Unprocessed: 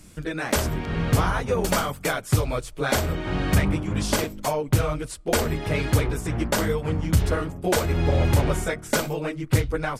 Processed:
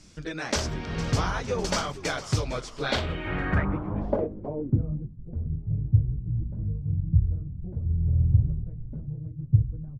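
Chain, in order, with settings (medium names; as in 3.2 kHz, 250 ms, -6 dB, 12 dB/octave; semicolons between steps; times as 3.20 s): frequency-shifting echo 456 ms, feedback 49%, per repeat -100 Hz, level -15 dB; low-pass sweep 5.6 kHz -> 120 Hz, 2.71–5.25 s; trim -5 dB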